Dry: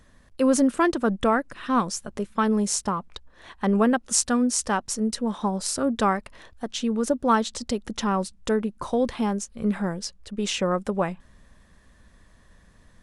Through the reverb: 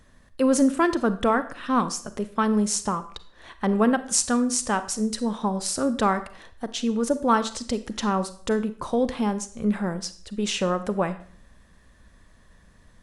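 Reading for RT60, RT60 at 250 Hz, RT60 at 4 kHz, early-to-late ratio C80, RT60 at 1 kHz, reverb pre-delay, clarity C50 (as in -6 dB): 0.50 s, 0.50 s, 0.50 s, 17.5 dB, 0.50 s, 32 ms, 14.0 dB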